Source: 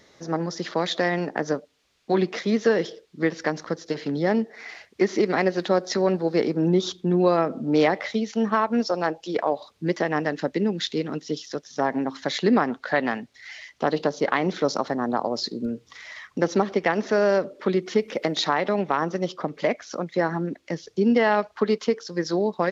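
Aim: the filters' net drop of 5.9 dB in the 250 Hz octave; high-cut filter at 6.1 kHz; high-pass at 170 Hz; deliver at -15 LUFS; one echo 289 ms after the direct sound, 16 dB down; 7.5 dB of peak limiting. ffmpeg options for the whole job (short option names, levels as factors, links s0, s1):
-af "highpass=170,lowpass=6100,equalizer=f=250:t=o:g=-7,alimiter=limit=0.188:level=0:latency=1,aecho=1:1:289:0.158,volume=4.47"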